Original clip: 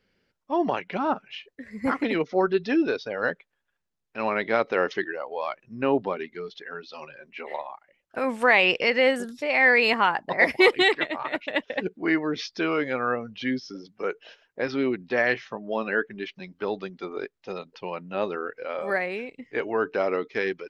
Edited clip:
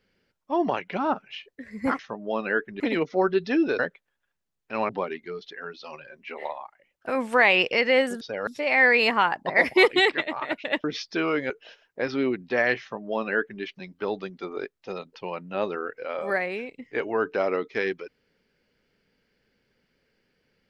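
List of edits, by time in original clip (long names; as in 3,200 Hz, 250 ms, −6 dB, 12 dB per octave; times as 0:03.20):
0:02.98–0:03.24: move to 0:09.30
0:04.34–0:05.98: remove
0:11.67–0:12.28: remove
0:12.94–0:14.10: remove
0:15.41–0:16.22: duplicate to 0:01.99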